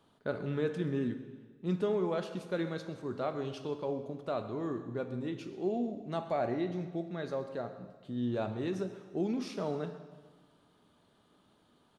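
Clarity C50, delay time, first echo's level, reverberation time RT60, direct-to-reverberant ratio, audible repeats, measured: 10.0 dB, 0.129 s, -18.0 dB, 1.4 s, 8.5 dB, 1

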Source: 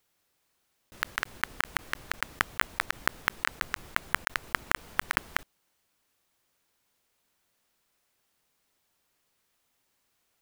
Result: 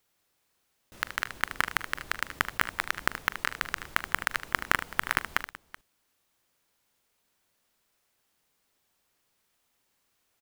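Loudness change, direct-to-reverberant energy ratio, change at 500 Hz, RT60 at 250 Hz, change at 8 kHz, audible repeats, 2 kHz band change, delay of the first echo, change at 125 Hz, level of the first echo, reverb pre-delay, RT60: +0.5 dB, none, +0.5 dB, none, +0.5 dB, 3, +0.5 dB, 41 ms, +0.5 dB, -18.0 dB, none, none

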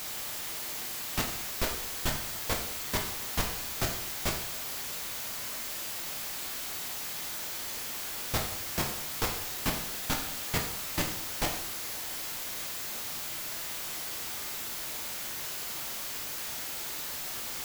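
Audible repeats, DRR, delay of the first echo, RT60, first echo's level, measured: none, 1.0 dB, none, 0.75 s, none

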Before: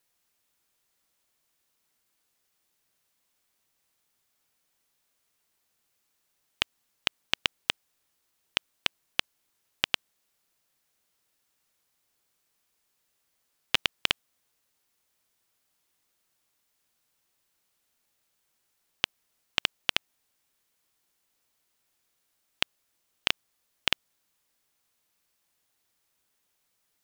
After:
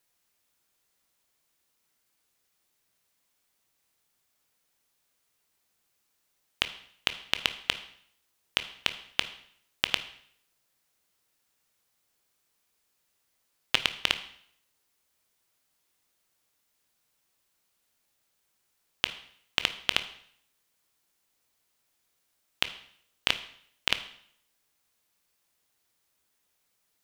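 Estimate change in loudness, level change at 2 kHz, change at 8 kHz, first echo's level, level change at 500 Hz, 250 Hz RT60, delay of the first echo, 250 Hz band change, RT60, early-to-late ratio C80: +0.5 dB, +0.5 dB, +0.5 dB, none, +0.5 dB, 0.65 s, none, +0.5 dB, 0.65 s, 16.0 dB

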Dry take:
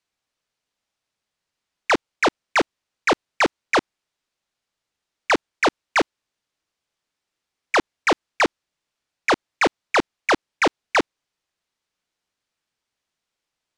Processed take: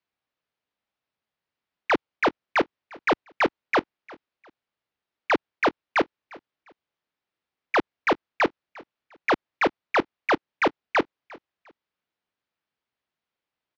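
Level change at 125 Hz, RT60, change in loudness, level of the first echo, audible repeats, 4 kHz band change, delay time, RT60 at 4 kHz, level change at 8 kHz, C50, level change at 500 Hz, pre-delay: -3.0 dB, none, -3.5 dB, -22.5 dB, 2, -7.5 dB, 0.352 s, none, under -15 dB, none, -2.5 dB, none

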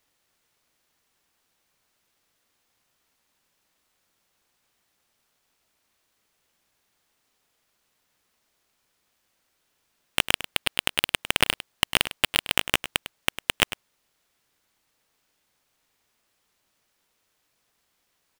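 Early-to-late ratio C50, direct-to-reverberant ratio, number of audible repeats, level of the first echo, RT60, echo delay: none, none, 1, -13.0 dB, none, 0.102 s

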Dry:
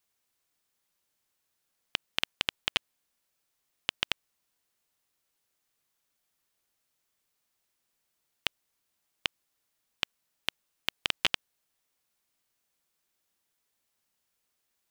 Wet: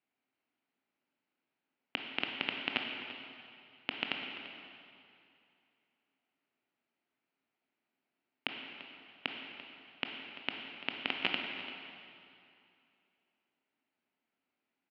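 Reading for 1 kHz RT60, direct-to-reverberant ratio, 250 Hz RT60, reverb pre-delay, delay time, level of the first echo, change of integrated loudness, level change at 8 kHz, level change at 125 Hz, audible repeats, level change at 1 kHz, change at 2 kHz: 2.6 s, 1.5 dB, 2.5 s, 18 ms, 0.341 s, -15.0 dB, -5.0 dB, under -25 dB, -4.0 dB, 1, -1.0 dB, -1.5 dB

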